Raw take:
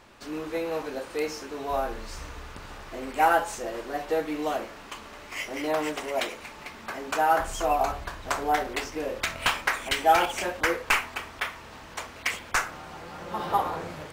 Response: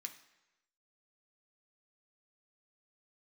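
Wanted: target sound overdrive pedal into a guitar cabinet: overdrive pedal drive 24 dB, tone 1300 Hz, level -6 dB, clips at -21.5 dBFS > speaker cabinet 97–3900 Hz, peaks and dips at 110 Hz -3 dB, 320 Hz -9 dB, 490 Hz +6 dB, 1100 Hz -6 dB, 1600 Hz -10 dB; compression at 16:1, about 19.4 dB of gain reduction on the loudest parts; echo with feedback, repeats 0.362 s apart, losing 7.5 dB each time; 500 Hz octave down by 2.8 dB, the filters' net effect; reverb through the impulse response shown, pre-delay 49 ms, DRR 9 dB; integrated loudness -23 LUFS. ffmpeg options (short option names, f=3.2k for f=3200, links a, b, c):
-filter_complex "[0:a]equalizer=f=500:t=o:g=-6,acompressor=threshold=-38dB:ratio=16,aecho=1:1:362|724|1086|1448|1810:0.422|0.177|0.0744|0.0312|0.0131,asplit=2[a][b];[1:a]atrim=start_sample=2205,adelay=49[c];[b][c]afir=irnorm=-1:irlink=0,volume=-5dB[d];[a][d]amix=inputs=2:normalize=0,asplit=2[e][f];[f]highpass=f=720:p=1,volume=24dB,asoftclip=type=tanh:threshold=-21.5dB[g];[e][g]amix=inputs=2:normalize=0,lowpass=f=1.3k:p=1,volume=-6dB,highpass=97,equalizer=f=110:t=q:w=4:g=-3,equalizer=f=320:t=q:w=4:g=-9,equalizer=f=490:t=q:w=4:g=6,equalizer=f=1.1k:t=q:w=4:g=-6,equalizer=f=1.6k:t=q:w=4:g=-10,lowpass=f=3.9k:w=0.5412,lowpass=f=3.9k:w=1.3066,volume=12dB"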